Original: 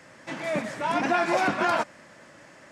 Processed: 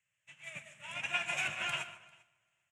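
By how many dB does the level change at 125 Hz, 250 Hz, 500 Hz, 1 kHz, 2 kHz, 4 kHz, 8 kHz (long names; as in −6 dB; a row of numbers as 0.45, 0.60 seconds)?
−13.5, −27.5, −23.0, −18.5, −7.0, −2.0, −4.0 decibels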